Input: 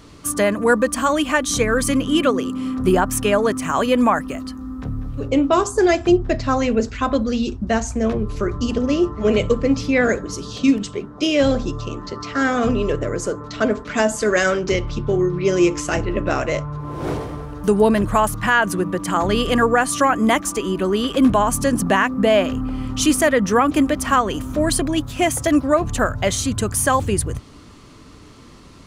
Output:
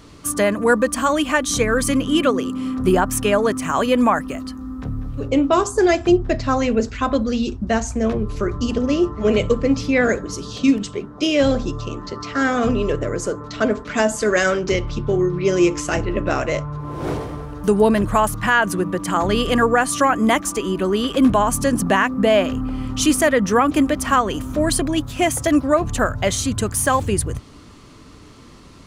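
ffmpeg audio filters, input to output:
ffmpeg -i in.wav -filter_complex "[0:a]asettb=1/sr,asplit=3[link_01][link_02][link_03];[link_01]atrim=end=26.664[link_04];[link_02]atrim=start=26.66:end=27.06,asetpts=PTS-STARTPTS,afade=type=in:duration=0.004:curve=qsin,afade=type=out:start_time=0.396:duration=0.004:curve=qsin,aeval=exprs='sgn(val(0))*max(abs(val(0))-0.00891,0)':channel_layout=same[link_05];[link_03]atrim=start=27.056[link_06];[link_04][link_05]acrossfade=duration=0.004:curve1=hsin:curve2=qsin[link_07];[link_07][link_06]acrossfade=duration=0.004:curve1=qsin:curve2=hsin" out.wav

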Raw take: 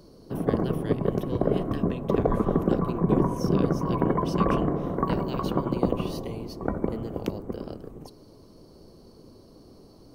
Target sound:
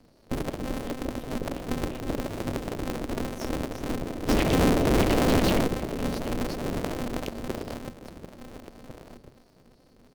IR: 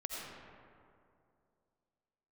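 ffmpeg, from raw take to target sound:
-filter_complex "[0:a]asettb=1/sr,asplit=3[link_01][link_02][link_03];[link_01]atrim=end=2.244[link_04];[link_02]atrim=start=2.24:end=2.69,asetpts=PTS-STARTPTS,afade=type=in:duration=0.004:curve=qsin,afade=type=out:start_time=0.446:duration=0.004:curve=qsin,aeval=exprs='val(0)+0.5*0.0224*sgn(val(0))':channel_layout=same[link_05];[link_03]atrim=start=2.686[link_06];[link_04][link_05]acrossfade=duration=0.004:curve1=hsin:curve2=qsin[link_07];[link_07][link_06]acrossfade=duration=0.004:curve1=qsin:curve2=hsin,agate=range=-13dB:threshold=-38dB:ratio=16:detection=peak,equalizer=frequency=110:width_type=o:width=0.24:gain=12.5,acompressor=threshold=-32dB:ratio=12,acrossover=split=460[link_08][link_09];[link_08]aeval=exprs='val(0)*(1-0.5/2+0.5/2*cos(2*PI*2.8*n/s))':channel_layout=same[link_10];[link_09]aeval=exprs='val(0)*(1-0.5/2-0.5/2*cos(2*PI*2.8*n/s))':channel_layout=same[link_11];[link_10][link_11]amix=inputs=2:normalize=0,asplit=3[link_12][link_13][link_14];[link_12]afade=type=out:start_time=4.28:duration=0.02[link_15];[link_13]aeval=exprs='0.0668*sin(PI/2*3.55*val(0)/0.0668)':channel_layout=same,afade=type=in:start_time=4.28:duration=0.02,afade=type=out:start_time=5.66:duration=0.02[link_16];[link_14]afade=type=in:start_time=5.66:duration=0.02[link_17];[link_15][link_16][link_17]amix=inputs=3:normalize=0,asuperstop=centerf=1100:order=12:qfactor=0.78,asplit=2[link_18][link_19];[link_19]adelay=1399,volume=-11dB,highshelf=frequency=4000:gain=-31.5[link_20];[link_18][link_20]amix=inputs=2:normalize=0,aeval=exprs='val(0)*sgn(sin(2*PI*130*n/s))':channel_layout=same,volume=7dB"

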